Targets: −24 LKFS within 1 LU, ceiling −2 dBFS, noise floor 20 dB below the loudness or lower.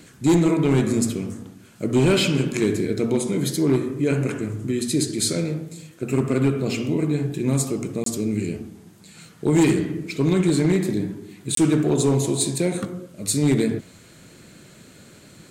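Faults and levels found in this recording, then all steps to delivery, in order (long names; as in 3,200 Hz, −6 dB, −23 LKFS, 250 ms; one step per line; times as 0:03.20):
share of clipped samples 1.1%; peaks flattened at −12.0 dBFS; number of dropouts 2; longest dropout 23 ms; integrated loudness −22.0 LKFS; sample peak −12.0 dBFS; target loudness −24.0 LKFS
→ clipped peaks rebuilt −12 dBFS
repair the gap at 0:08.04/0:11.55, 23 ms
level −2 dB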